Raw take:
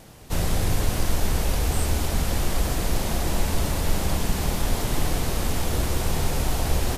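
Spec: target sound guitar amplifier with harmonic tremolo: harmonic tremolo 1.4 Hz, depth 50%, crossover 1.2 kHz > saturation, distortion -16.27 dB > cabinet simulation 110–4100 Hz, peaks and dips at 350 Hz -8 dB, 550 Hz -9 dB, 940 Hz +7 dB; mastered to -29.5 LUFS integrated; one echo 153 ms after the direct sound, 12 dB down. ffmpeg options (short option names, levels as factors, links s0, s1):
-filter_complex "[0:a]aecho=1:1:153:0.251,acrossover=split=1200[s0][s1];[s0]aeval=exprs='val(0)*(1-0.5/2+0.5/2*cos(2*PI*1.4*n/s))':c=same[s2];[s1]aeval=exprs='val(0)*(1-0.5/2-0.5/2*cos(2*PI*1.4*n/s))':c=same[s3];[s2][s3]amix=inputs=2:normalize=0,asoftclip=threshold=0.133,highpass=110,equalizer=f=350:t=q:w=4:g=-8,equalizer=f=550:t=q:w=4:g=-9,equalizer=f=940:t=q:w=4:g=7,lowpass=f=4100:w=0.5412,lowpass=f=4100:w=1.3066,volume=1.68"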